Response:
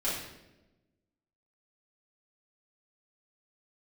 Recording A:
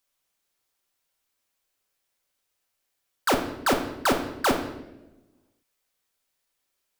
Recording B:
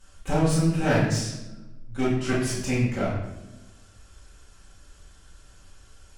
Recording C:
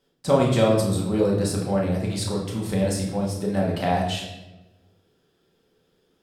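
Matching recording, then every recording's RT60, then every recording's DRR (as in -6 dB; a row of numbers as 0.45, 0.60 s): B; 1.0, 1.0, 1.0 s; 3.0, -10.0, -3.5 dB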